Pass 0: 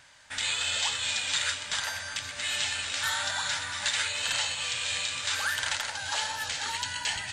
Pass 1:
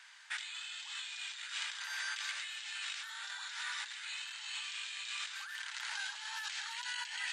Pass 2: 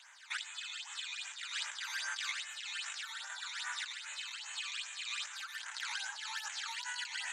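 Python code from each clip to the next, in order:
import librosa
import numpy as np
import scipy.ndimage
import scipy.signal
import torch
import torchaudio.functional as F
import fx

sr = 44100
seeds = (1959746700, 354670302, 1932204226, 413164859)

y1 = fx.over_compress(x, sr, threshold_db=-37.0, ratio=-1.0)
y1 = scipy.signal.sosfilt(scipy.signal.bessel(8, 1500.0, 'highpass', norm='mag', fs=sr, output='sos'), y1)
y1 = fx.high_shelf(y1, sr, hz=5100.0, db=-11.0)
y1 = y1 * 10.0 ** (-1.5 / 20.0)
y2 = fx.phaser_stages(y1, sr, stages=12, low_hz=490.0, high_hz=4500.0, hz=2.5, feedback_pct=40)
y2 = y2 * 10.0 ** (4.0 / 20.0)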